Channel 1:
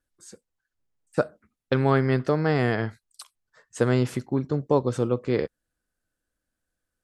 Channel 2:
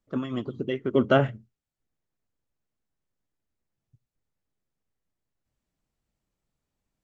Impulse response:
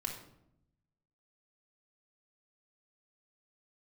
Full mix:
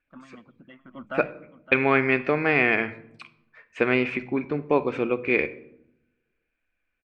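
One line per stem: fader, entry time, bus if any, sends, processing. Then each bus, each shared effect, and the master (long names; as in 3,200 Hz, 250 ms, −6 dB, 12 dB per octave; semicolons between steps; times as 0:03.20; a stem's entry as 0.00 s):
−2.5 dB, 0.00 s, send −8 dB, no echo send, no processing
−11.0 dB, 0.00 s, no send, echo send −14.5 dB, phaser with its sweep stopped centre 1,000 Hz, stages 4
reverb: on, RT60 0.75 s, pre-delay 3 ms
echo: single-tap delay 563 ms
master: low-pass with resonance 2,400 Hz, resonance Q 15; parametric band 120 Hz −15 dB 0.47 octaves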